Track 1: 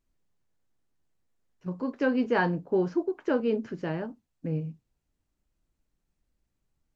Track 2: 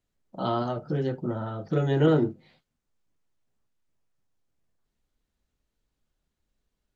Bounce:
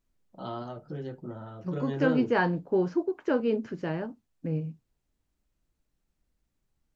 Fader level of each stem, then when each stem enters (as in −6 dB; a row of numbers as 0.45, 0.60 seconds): 0.0, −9.5 decibels; 0.00, 0.00 seconds